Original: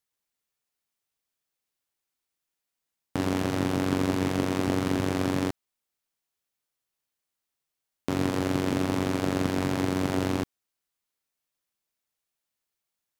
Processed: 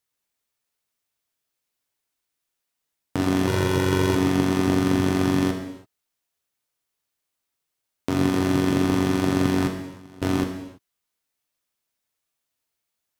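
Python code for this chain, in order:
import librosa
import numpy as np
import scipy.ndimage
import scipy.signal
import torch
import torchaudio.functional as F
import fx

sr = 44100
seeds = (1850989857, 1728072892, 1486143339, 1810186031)

y = fx.comb(x, sr, ms=2.1, depth=0.89, at=(3.47, 4.15))
y = fx.gate_flip(y, sr, shuts_db=-18.0, range_db=-24, at=(9.66, 10.22))
y = fx.rev_gated(y, sr, seeds[0], gate_ms=360, shape='falling', drr_db=4.0)
y = F.gain(torch.from_numpy(y), 2.5).numpy()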